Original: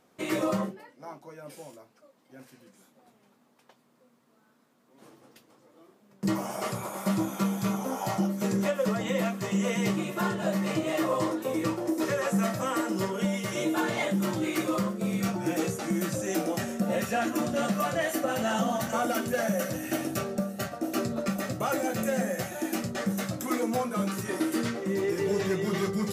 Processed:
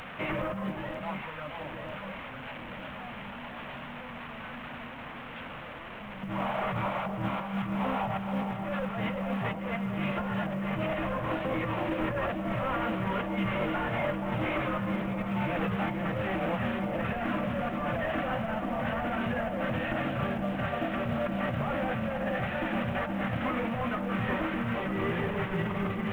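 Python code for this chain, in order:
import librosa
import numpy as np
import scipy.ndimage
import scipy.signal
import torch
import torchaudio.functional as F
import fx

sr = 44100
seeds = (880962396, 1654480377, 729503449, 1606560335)

y = fx.delta_mod(x, sr, bps=16000, step_db=-40.5)
y = fx.peak_eq(y, sr, hz=360.0, db=-14.5, octaves=0.89)
y = fx.over_compress(y, sr, threshold_db=-37.0, ratio=-1.0)
y = fx.echo_alternate(y, sr, ms=472, hz=1000.0, feedback_pct=74, wet_db=-5)
y = fx.quant_companded(y, sr, bits=8)
y = y * librosa.db_to_amplitude(4.5)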